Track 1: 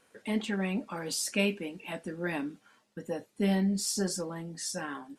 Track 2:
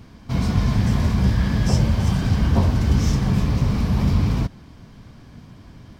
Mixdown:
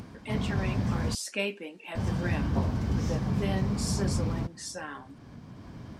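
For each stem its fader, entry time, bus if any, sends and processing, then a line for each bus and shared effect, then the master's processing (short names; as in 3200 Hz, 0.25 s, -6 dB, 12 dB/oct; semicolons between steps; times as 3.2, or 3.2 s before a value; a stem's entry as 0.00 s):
-0.5 dB, 0.00 s, no send, tone controls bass -11 dB, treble 0 dB
+2.0 dB, 0.00 s, muted 1.15–1.95, no send, HPF 110 Hz 6 dB/oct; bell 3200 Hz -5 dB 1.9 oct; auto duck -9 dB, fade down 0.35 s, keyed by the first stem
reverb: off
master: high shelf 10000 Hz -10.5 dB; upward compressor, threshold -41 dBFS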